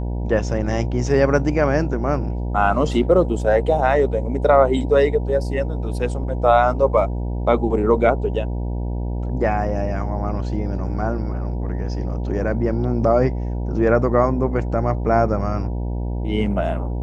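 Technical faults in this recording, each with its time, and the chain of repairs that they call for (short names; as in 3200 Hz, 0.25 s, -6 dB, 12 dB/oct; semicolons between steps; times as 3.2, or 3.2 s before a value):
buzz 60 Hz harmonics 16 -24 dBFS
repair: de-hum 60 Hz, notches 16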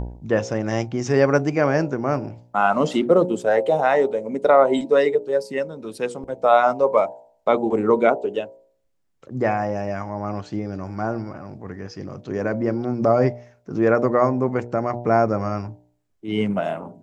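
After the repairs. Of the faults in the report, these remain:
none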